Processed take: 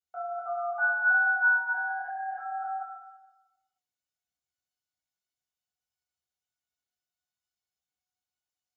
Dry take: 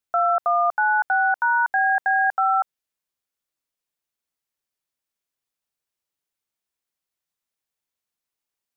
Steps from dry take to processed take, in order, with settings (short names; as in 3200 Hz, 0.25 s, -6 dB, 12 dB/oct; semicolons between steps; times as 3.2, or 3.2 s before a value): reverse delay 0.155 s, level -8.5 dB; limiter -22 dBFS, peak gain reduction 11 dB; resonator 730 Hz, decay 0.25 s, mix 90%; reverb RT60 1.1 s, pre-delay 3 ms, DRR -8 dB